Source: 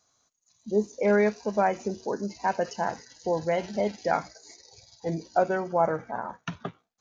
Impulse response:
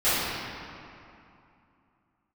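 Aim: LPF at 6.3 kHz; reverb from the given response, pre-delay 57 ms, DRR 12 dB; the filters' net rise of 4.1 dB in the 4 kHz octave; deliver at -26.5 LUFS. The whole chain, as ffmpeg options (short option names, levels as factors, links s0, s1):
-filter_complex "[0:a]lowpass=6300,equalizer=f=4000:t=o:g=6.5,asplit=2[s0][s1];[1:a]atrim=start_sample=2205,adelay=57[s2];[s1][s2]afir=irnorm=-1:irlink=0,volume=0.0335[s3];[s0][s3]amix=inputs=2:normalize=0,volume=1.19"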